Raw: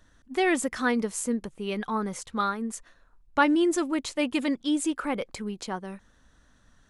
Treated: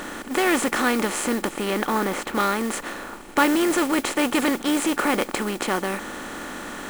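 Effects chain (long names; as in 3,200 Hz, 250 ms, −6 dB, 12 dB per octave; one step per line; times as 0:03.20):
compressor on every frequency bin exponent 0.4
0:01.70–0:02.38: high-shelf EQ 5,600 Hz −9.5 dB
noise that follows the level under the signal 16 dB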